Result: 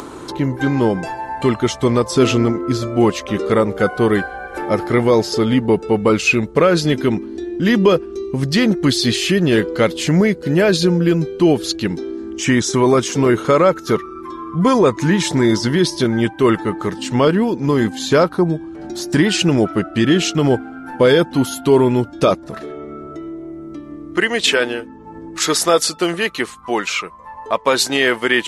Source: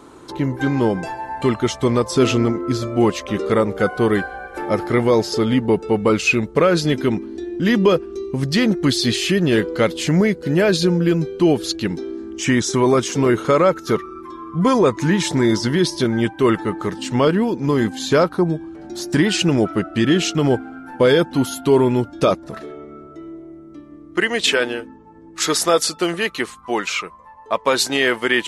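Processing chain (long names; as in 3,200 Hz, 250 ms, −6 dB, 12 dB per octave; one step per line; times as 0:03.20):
upward compression, threshold −26 dBFS
level +2 dB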